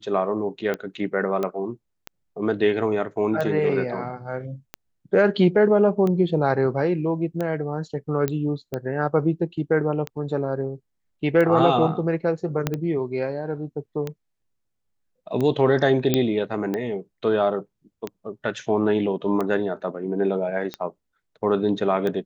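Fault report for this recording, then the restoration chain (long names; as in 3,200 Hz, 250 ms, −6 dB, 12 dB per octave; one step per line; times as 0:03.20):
scratch tick 45 rpm −15 dBFS
0:01.43: click −14 dBFS
0:08.28: click −11 dBFS
0:12.67: click −8 dBFS
0:16.14: click −5 dBFS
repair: click removal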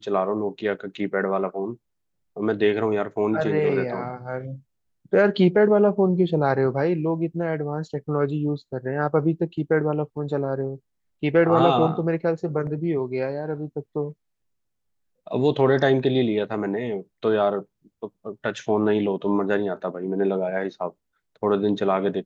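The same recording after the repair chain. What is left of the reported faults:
0:12.67: click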